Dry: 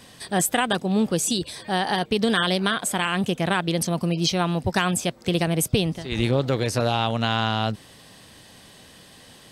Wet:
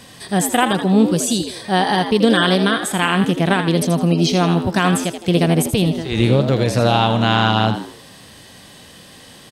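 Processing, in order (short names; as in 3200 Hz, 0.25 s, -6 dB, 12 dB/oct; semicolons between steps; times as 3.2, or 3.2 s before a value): harmonic-percussive split harmonic +7 dB; frequency-shifting echo 81 ms, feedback 35%, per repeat +82 Hz, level -9 dB; gain +1 dB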